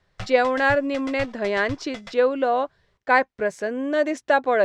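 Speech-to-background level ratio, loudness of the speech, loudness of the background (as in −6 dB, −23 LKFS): 17.5 dB, −22.5 LKFS, −40.0 LKFS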